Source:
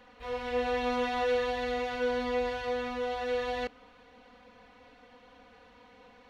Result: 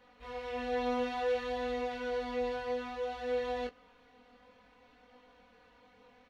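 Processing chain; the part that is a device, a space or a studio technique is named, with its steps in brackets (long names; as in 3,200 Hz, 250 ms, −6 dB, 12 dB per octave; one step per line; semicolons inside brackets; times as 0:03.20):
double-tracked vocal (double-tracking delay 16 ms −11.5 dB; chorus effect 0.58 Hz, delay 20 ms, depth 4.3 ms)
level −3 dB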